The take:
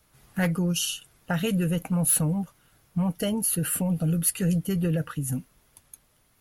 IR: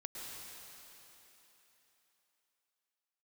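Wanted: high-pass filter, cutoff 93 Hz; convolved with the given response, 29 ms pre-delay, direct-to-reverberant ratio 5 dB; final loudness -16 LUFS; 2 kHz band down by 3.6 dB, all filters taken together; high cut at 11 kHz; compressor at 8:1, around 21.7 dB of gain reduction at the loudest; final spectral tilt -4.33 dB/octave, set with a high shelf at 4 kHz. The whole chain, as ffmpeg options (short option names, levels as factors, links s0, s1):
-filter_complex "[0:a]highpass=93,lowpass=11000,equalizer=f=2000:t=o:g=-7.5,highshelf=f=4000:g=9,acompressor=threshold=0.0141:ratio=8,asplit=2[s0][s1];[1:a]atrim=start_sample=2205,adelay=29[s2];[s1][s2]afir=irnorm=-1:irlink=0,volume=0.631[s3];[s0][s3]amix=inputs=2:normalize=0,volume=14.1"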